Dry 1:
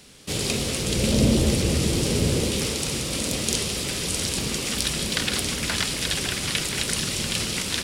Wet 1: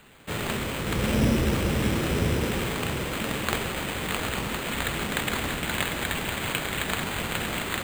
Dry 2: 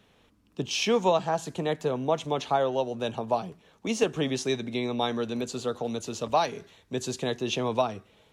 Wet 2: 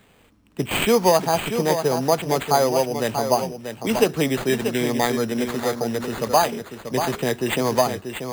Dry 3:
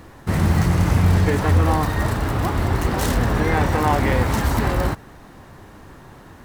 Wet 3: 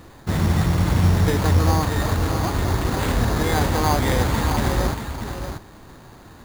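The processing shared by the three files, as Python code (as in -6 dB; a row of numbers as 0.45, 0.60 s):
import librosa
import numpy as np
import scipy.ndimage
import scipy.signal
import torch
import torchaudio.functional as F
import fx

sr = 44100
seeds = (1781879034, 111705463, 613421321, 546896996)

y = fx.wow_flutter(x, sr, seeds[0], rate_hz=2.1, depth_cents=29.0)
y = y + 10.0 ** (-8.0 / 20.0) * np.pad(y, (int(636 * sr / 1000.0), 0))[:len(y)]
y = np.repeat(y[::8], 8)[:len(y)]
y = y * 10.0 ** (-6 / 20.0) / np.max(np.abs(y))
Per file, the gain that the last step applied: -3.5, +6.5, -1.5 dB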